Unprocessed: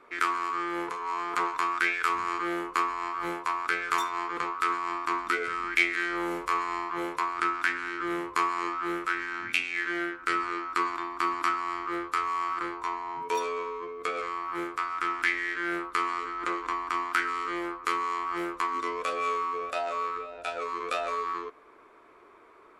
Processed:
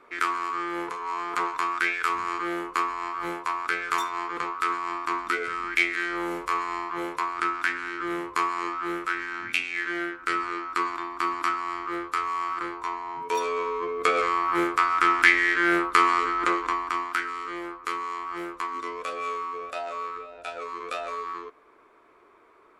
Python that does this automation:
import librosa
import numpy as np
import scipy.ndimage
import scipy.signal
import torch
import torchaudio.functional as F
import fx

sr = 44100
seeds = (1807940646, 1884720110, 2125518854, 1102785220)

y = fx.gain(x, sr, db=fx.line((13.24, 1.0), (13.97, 9.0), (16.3, 9.0), (17.28, -2.0)))